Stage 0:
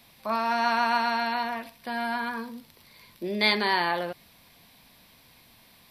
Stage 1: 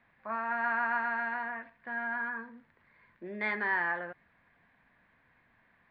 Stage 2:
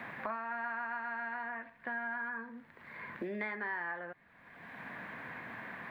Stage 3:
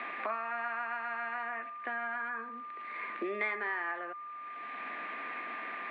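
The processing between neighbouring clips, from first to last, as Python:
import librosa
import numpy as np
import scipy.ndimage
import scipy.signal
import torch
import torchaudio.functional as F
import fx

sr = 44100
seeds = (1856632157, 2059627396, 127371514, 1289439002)

y1 = fx.ladder_lowpass(x, sr, hz=1900.0, resonance_pct=65)
y2 = fx.band_squash(y1, sr, depth_pct=100)
y2 = F.gain(torch.from_numpy(y2), -6.0).numpy()
y3 = y2 + 10.0 ** (-45.0 / 20.0) * np.sin(2.0 * np.pi * 1200.0 * np.arange(len(y2)) / sr)
y3 = fx.cabinet(y3, sr, low_hz=310.0, low_slope=24, high_hz=4200.0, hz=(520.0, 930.0, 1600.0, 2500.0), db=(-6, -7, -6, 5))
y3 = F.gain(torch.from_numpy(y3), 6.0).numpy()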